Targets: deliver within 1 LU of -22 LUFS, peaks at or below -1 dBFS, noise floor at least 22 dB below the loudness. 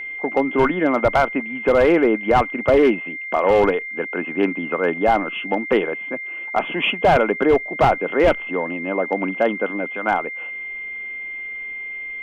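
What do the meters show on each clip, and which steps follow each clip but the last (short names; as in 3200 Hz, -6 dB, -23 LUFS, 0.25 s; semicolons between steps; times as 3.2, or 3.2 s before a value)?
clipped 0.8%; flat tops at -8.0 dBFS; steady tone 2100 Hz; tone level -28 dBFS; loudness -20.0 LUFS; peak -8.0 dBFS; loudness target -22.0 LUFS
-> clip repair -8 dBFS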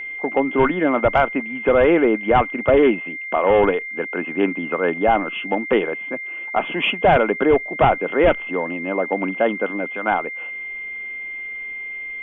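clipped 0.0%; steady tone 2100 Hz; tone level -28 dBFS
-> notch 2100 Hz, Q 30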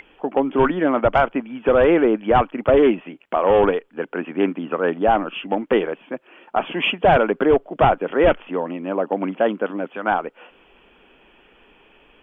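steady tone none; loudness -20.0 LUFS; peak -3.5 dBFS; loudness target -22.0 LUFS
-> gain -2 dB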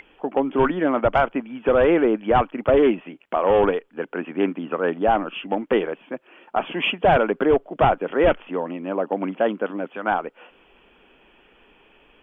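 loudness -22.0 LUFS; peak -5.5 dBFS; noise floor -56 dBFS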